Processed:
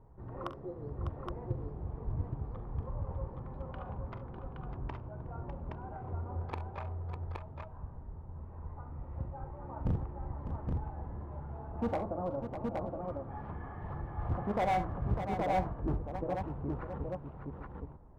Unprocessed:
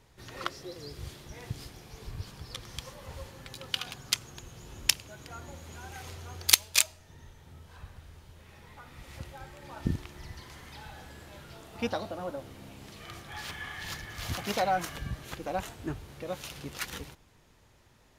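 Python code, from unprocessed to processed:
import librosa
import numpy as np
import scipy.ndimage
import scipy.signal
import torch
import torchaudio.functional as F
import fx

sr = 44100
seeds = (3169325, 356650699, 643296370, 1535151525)

y = scipy.signal.sosfilt(scipy.signal.cheby1(3, 1.0, 1000.0, 'lowpass', fs=sr, output='sos'), x)
y = fx.low_shelf(y, sr, hz=100.0, db=6.0)
y = np.clip(y, -10.0 ** (-28.0 / 20.0), 10.0 ** (-28.0 / 20.0))
y = fx.echo_multitap(y, sr, ms=(43, 67, 601, 820), db=(-11.5, -15.0, -8.5, -3.5))
y = y * librosa.db_to_amplitude(1.0)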